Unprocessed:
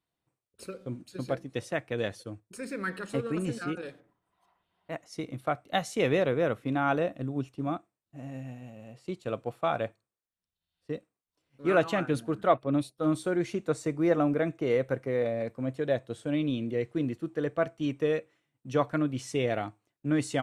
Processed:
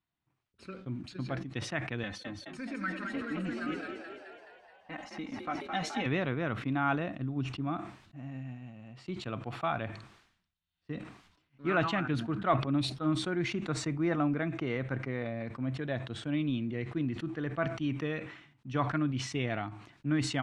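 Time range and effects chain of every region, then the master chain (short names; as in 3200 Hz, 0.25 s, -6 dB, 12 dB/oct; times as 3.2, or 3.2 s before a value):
2.03–6.06 comb 3.9 ms, depth 93% + compressor 1.5:1, threshold -37 dBFS + frequency-shifting echo 0.213 s, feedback 60%, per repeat +49 Hz, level -5 dB
whole clip: LPF 3400 Hz 12 dB/oct; bell 500 Hz -13 dB 0.76 oct; sustainer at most 79 dB/s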